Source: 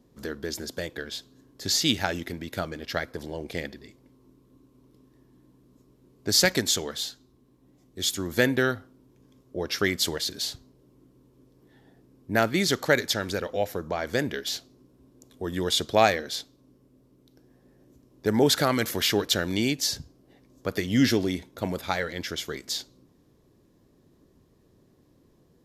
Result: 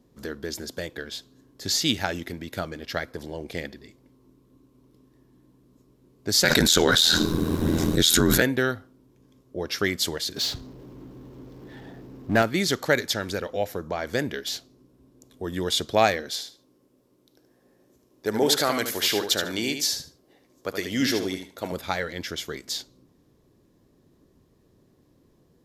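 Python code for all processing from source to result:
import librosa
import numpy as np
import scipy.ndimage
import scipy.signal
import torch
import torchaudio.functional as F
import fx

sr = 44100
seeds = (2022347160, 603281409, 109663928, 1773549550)

y = fx.chain(x, sr, fx.small_body(hz=(1500.0, 3800.0), ring_ms=25, db=12),
    fx.ring_mod(carrier_hz=41.0),
    fx.env_flatten(amount_pct=100), at=(6.44, 8.42))
y = fx.chain(y, sr, fx.peak_eq(hz=10000.0, db=-13.5, octaves=0.88),
    fx.power_curve(exponent=0.7), at=(10.36, 12.42))
y = fx.chain(y, sr, fx.bass_treble(bass_db=-10, treble_db=2),
    fx.echo_feedback(ms=75, feedback_pct=19, wet_db=-7.5), at=(16.31, 21.72))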